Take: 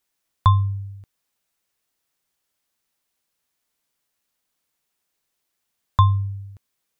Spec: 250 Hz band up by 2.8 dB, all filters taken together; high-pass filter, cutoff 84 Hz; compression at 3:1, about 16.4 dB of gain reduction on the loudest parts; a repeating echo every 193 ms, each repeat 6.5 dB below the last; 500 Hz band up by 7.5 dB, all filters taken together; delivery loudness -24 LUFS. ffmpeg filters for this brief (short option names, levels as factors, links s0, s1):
-af "highpass=84,equalizer=f=250:t=o:g=7,equalizer=f=500:t=o:g=8.5,acompressor=threshold=0.0224:ratio=3,aecho=1:1:193|386|579|772|965|1158:0.473|0.222|0.105|0.0491|0.0231|0.0109,volume=3.55"